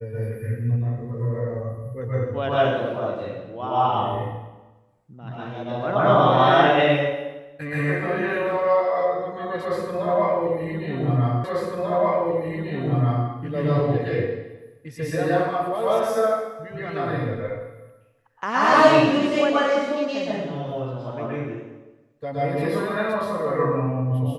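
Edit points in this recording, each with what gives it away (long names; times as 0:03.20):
0:11.44: the same again, the last 1.84 s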